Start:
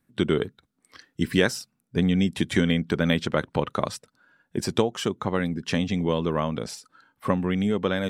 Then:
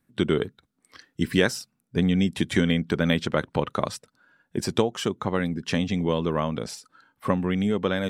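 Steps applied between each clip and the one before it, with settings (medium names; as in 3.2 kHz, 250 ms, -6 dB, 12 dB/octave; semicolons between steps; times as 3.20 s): no audible change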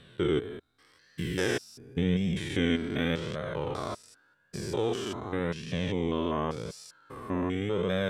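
spectrogram pixelated in time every 200 ms; flange 0.88 Hz, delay 1.6 ms, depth 1.5 ms, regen -22%; trim +2 dB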